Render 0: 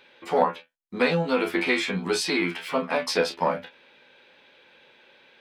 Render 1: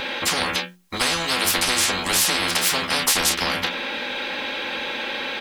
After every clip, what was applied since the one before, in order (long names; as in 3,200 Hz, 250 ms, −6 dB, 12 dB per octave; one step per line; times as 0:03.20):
mains-hum notches 60/120/180/240/300/360 Hz
comb filter 3.7 ms, depth 59%
every bin compressed towards the loudest bin 10 to 1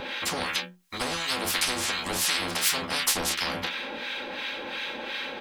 two-band tremolo in antiphase 2.8 Hz, depth 70%, crossover 1,100 Hz
level −3 dB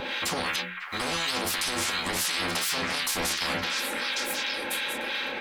on a send: echo through a band-pass that steps 545 ms, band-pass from 1,700 Hz, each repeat 1.4 octaves, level −3.5 dB
on the sum: brickwall limiter −20 dBFS, peak gain reduction 9.5 dB
level +2 dB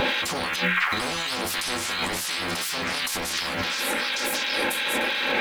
compressor whose output falls as the input rises −36 dBFS, ratio −1
surface crackle 550 per second −44 dBFS
level +9 dB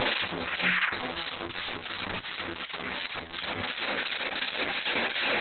flanger 0.54 Hz, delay 7.8 ms, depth 9.6 ms, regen +44%
Opus 6 kbit/s 48,000 Hz